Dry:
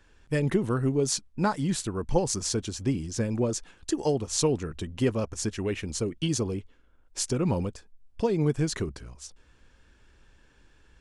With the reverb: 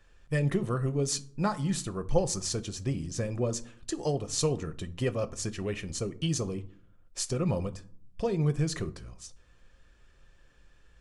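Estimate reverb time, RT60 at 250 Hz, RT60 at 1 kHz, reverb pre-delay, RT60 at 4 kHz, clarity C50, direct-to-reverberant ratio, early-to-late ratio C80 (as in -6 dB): 0.55 s, 0.75 s, 0.55 s, 6 ms, 0.30 s, 19.5 dB, 10.0 dB, 23.5 dB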